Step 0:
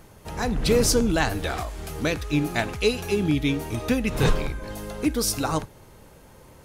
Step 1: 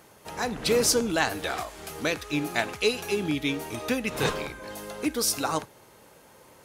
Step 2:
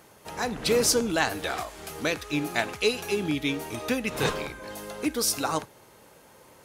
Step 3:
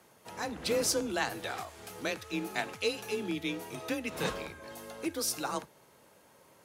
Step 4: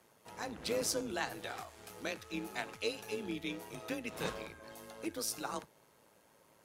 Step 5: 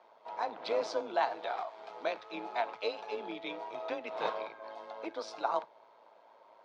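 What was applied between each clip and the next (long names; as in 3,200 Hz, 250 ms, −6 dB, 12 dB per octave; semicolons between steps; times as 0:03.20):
high-pass filter 410 Hz 6 dB per octave
no processing that can be heard
frequency shifter +27 Hz; level −7 dB
amplitude modulation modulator 110 Hz, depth 35%; level −3 dB
loudspeaker in its box 470–3,800 Hz, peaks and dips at 660 Hz +9 dB, 940 Hz +8 dB, 1,800 Hz −6 dB, 2,800 Hz −7 dB; level +4 dB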